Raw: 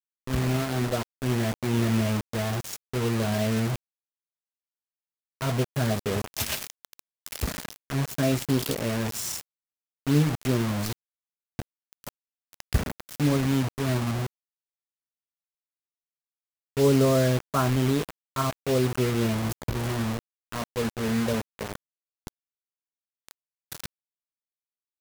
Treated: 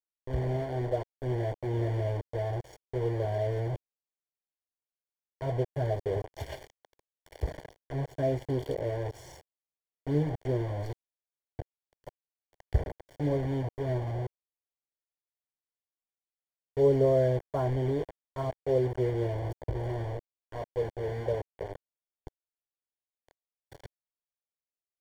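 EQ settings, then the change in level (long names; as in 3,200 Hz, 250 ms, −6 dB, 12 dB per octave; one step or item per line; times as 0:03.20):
Savitzky-Golay smoothing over 41 samples
phaser with its sweep stopped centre 530 Hz, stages 4
0.0 dB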